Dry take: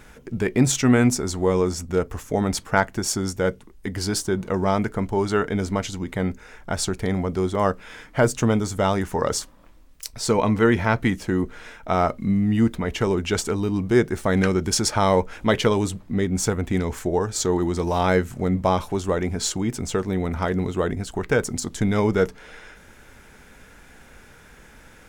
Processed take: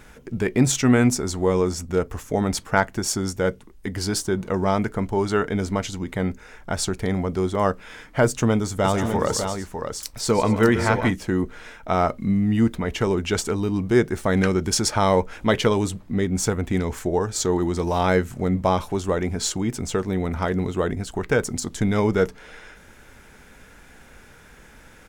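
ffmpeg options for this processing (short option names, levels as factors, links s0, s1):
-filter_complex "[0:a]asplit=3[s0][s1][s2];[s0]afade=t=out:st=8.84:d=0.02[s3];[s1]aecho=1:1:144|243|601:0.282|0.126|0.447,afade=t=in:st=8.84:d=0.02,afade=t=out:st=11.1:d=0.02[s4];[s2]afade=t=in:st=11.1:d=0.02[s5];[s3][s4][s5]amix=inputs=3:normalize=0"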